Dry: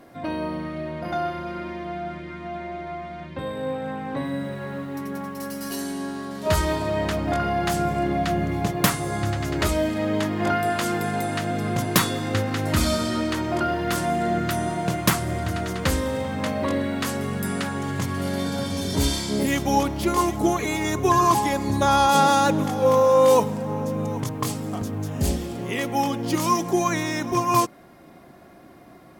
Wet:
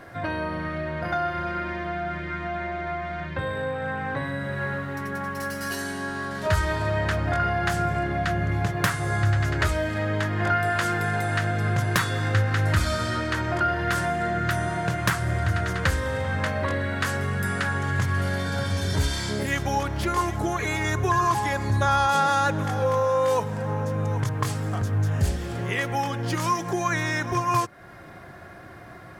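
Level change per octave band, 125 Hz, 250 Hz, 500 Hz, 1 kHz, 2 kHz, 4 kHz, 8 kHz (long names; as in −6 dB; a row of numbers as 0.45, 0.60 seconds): +3.0, −6.0, −4.0, −2.0, +4.0, −3.5, −5.5 decibels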